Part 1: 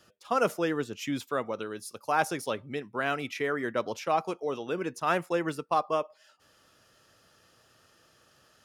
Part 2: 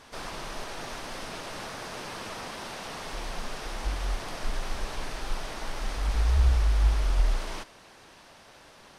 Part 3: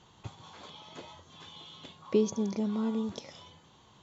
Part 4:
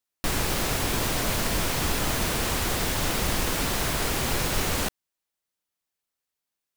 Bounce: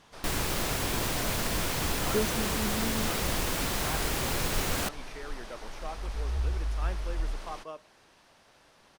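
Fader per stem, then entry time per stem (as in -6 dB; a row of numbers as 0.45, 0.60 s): -14.0, -8.0, -4.0, -4.0 dB; 1.75, 0.00, 0.00, 0.00 s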